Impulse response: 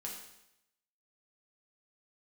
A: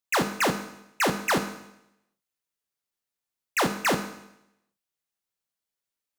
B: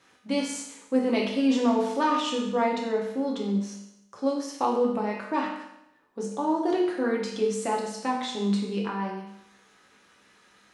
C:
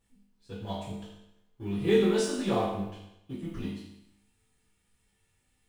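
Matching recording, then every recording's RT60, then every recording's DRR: B; 0.85 s, 0.85 s, 0.85 s; 5.5 dB, -2.5 dB, -11.0 dB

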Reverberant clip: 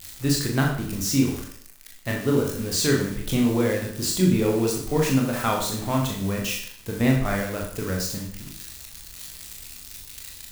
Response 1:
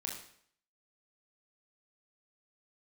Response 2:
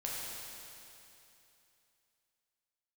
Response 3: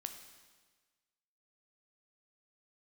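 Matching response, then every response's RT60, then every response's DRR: 1; 0.60 s, 2.9 s, 1.4 s; -1.5 dB, -5.0 dB, 6.0 dB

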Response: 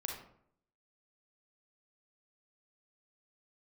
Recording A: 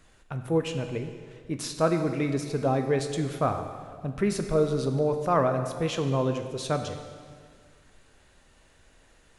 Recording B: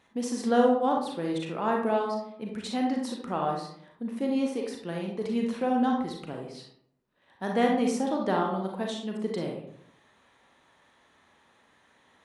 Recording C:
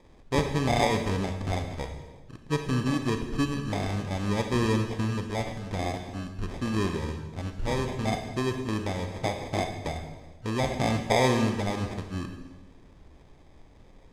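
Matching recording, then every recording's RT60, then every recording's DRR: B; 1.9 s, 0.65 s, 1.2 s; 6.0 dB, 0.0 dB, 5.5 dB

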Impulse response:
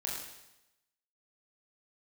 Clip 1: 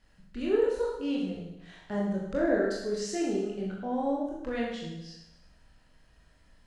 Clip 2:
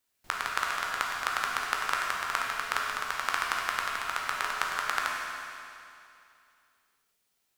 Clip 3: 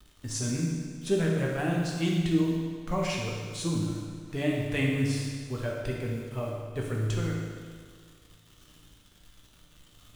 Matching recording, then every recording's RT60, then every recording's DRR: 1; 0.90 s, 2.6 s, 1.8 s; -4.0 dB, -2.5 dB, -2.5 dB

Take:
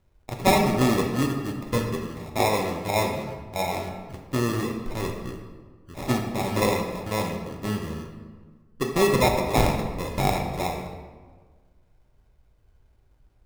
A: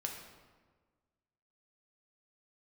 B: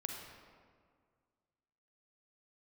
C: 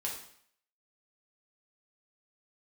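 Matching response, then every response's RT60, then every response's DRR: A; 1.5 s, 1.9 s, 0.60 s; 1.0 dB, 1.5 dB, -3.0 dB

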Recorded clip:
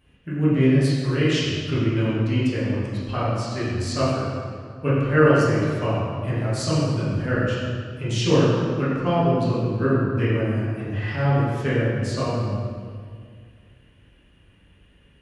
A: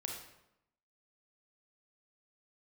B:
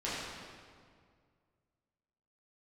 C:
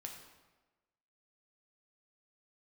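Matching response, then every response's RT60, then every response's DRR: B; 0.85 s, 2.0 s, 1.2 s; 0.5 dB, -10.5 dB, 1.5 dB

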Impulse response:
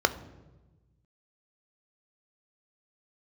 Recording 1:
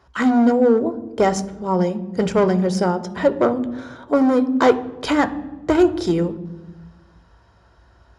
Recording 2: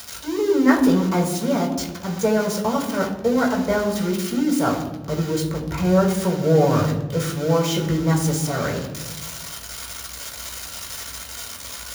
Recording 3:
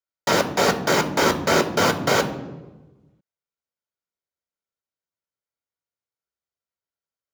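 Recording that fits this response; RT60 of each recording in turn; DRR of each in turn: 1; 1.1 s, 1.1 s, 1.1 s; 8.5 dB, -2.5 dB, 4.0 dB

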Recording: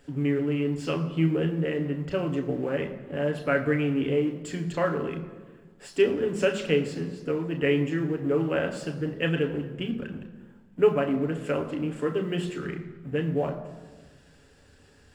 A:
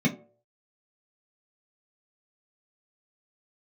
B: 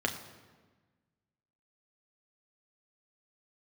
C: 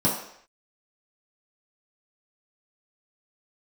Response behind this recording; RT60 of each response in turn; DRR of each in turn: B; 0.50 s, 1.4 s, no single decay rate; -4.0 dB, 3.0 dB, -7.0 dB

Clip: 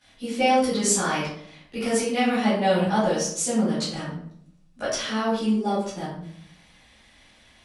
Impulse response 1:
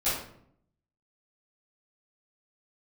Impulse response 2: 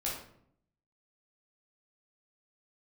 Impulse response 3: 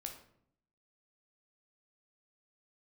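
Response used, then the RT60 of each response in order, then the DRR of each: 1; 0.65 s, 0.65 s, 0.65 s; -15.5 dB, -6.0 dB, 2.5 dB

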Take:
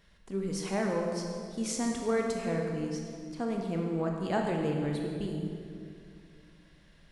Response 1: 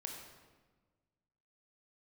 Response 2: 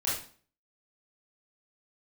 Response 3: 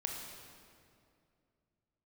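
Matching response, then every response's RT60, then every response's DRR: 3; 1.4 s, 0.45 s, 2.4 s; 0.5 dB, -8.5 dB, 0.5 dB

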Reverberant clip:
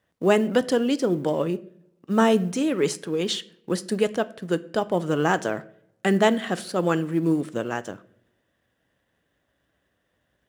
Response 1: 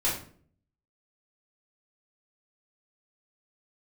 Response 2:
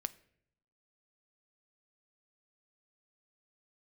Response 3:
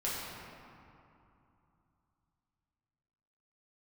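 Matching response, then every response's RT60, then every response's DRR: 2; 0.50 s, 0.70 s, 2.8 s; -8.5 dB, 13.5 dB, -8.5 dB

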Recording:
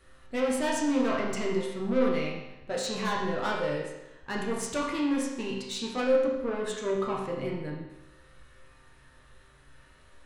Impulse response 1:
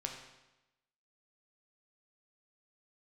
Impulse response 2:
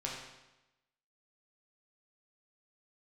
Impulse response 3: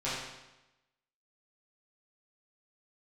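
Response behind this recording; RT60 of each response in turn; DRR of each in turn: 2; 1.0 s, 1.0 s, 1.0 s; 1.5 dB, -4.0 dB, -11.5 dB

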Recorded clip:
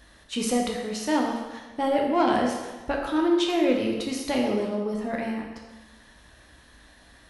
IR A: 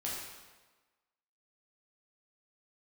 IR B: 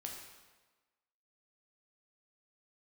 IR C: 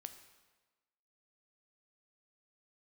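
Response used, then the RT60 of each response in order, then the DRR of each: B; 1.3 s, 1.3 s, 1.3 s; -6.0 dB, 0.0 dB, 8.0 dB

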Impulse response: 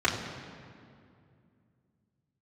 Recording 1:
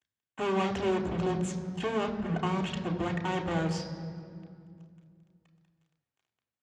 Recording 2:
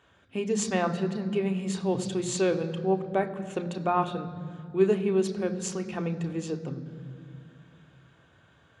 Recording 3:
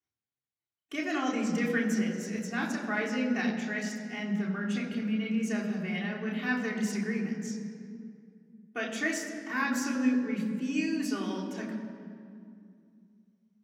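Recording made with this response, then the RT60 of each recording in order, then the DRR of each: 3; 2.4 s, 2.4 s, 2.4 s; 1.5 dB, 6.0 dB, -6.5 dB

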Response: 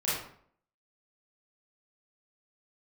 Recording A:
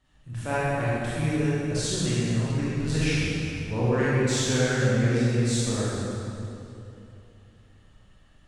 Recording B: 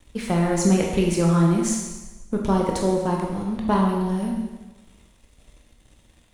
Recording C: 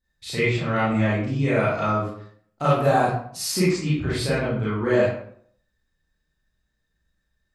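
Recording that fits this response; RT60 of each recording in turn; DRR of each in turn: C; 2.8 s, 1.2 s, 0.60 s; -10.0 dB, -1.0 dB, -10.0 dB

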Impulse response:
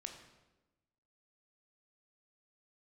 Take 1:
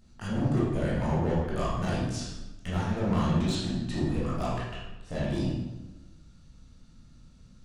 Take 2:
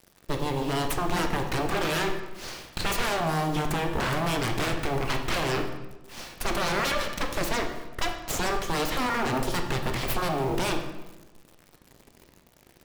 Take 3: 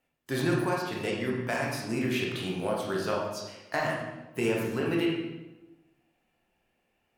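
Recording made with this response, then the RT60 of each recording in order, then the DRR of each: 2; 1.1 s, 1.1 s, 1.1 s; -8.0 dB, 4.0 dB, -3.0 dB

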